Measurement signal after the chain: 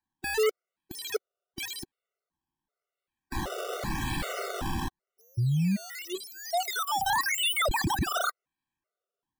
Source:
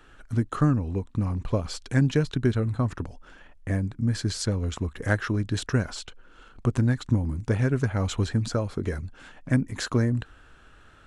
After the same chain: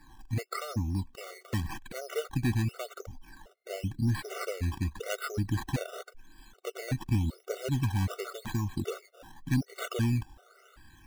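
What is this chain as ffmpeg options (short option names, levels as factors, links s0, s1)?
-af "acrusher=samples=14:mix=1:aa=0.000001:lfo=1:lforange=14:lforate=0.9,asoftclip=type=tanh:threshold=0.0944,afftfilt=real='re*gt(sin(2*PI*1.3*pts/sr)*(1-2*mod(floor(b*sr/1024/380),2)),0)':imag='im*gt(sin(2*PI*1.3*pts/sr)*(1-2*mod(floor(b*sr/1024/380),2)),0)':win_size=1024:overlap=0.75"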